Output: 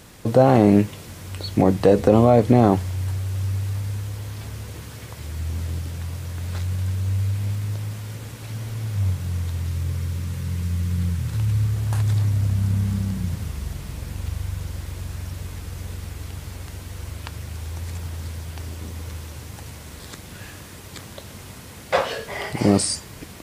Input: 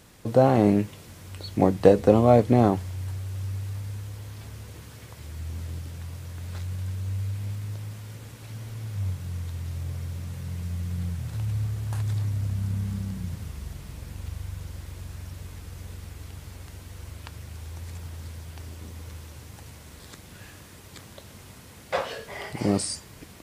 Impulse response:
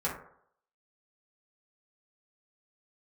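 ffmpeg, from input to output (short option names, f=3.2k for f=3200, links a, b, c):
-filter_complex "[0:a]asettb=1/sr,asplit=3[a][b][c];[a]atrim=end=9.674[d];[b]atrim=start=9.67:end=11.74,asetpts=PTS-STARTPTS,afade=t=in:d=0.004:c=qsin,afade=t=out:st=2.066:d=0.004:c=qsin,equalizer=f=690:w=4.5:g=-10[e];[c]atrim=start=11.736[f];[d][e]acrossfade=d=0.004:c1=hsin:c2=qsin[g];[g][f]acrossfade=d=0.004:c1=qsin:c2=hsin,alimiter=level_in=9.5dB:limit=-1dB:release=50:level=0:latency=1,volume=-2.5dB"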